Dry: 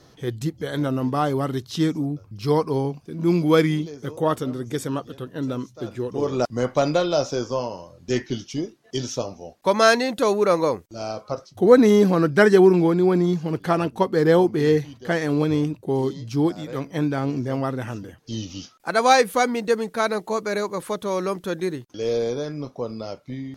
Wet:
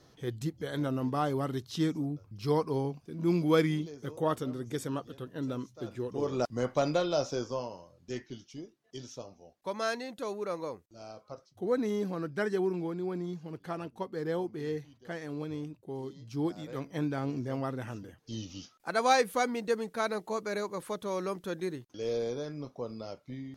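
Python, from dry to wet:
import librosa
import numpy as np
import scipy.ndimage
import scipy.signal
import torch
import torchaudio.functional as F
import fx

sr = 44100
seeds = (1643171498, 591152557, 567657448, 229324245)

y = fx.gain(x, sr, db=fx.line((7.38, -8.0), (8.35, -16.5), (16.09, -16.5), (16.56, -9.0)))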